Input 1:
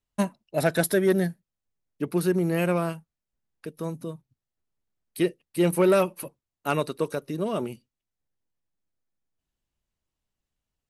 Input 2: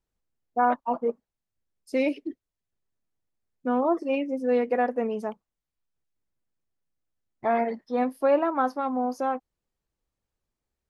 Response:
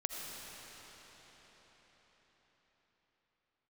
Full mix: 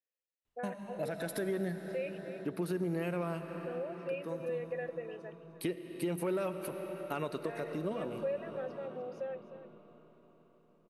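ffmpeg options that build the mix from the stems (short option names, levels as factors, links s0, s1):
-filter_complex "[0:a]bass=f=250:g=-2,treble=f=4000:g=-7,alimiter=limit=0.119:level=0:latency=1:release=101,adelay=450,volume=0.75,asplit=2[s0][s1];[s1]volume=0.473[s2];[1:a]asplit=3[s3][s4][s5];[s3]bandpass=f=530:t=q:w=8,volume=1[s6];[s4]bandpass=f=1840:t=q:w=8,volume=0.501[s7];[s5]bandpass=f=2480:t=q:w=8,volume=0.355[s8];[s6][s7][s8]amix=inputs=3:normalize=0,tiltshelf=f=1500:g=-7,volume=1.06,asplit=3[s9][s10][s11];[s10]volume=0.168[s12];[s11]apad=whole_len=500096[s13];[s0][s13]sidechaincompress=threshold=0.00631:ratio=8:attack=16:release=521[s14];[2:a]atrim=start_sample=2205[s15];[s2][s15]afir=irnorm=-1:irlink=0[s16];[s12]aecho=0:1:302:1[s17];[s14][s9][s16][s17]amix=inputs=4:normalize=0,acompressor=threshold=0.0141:ratio=2"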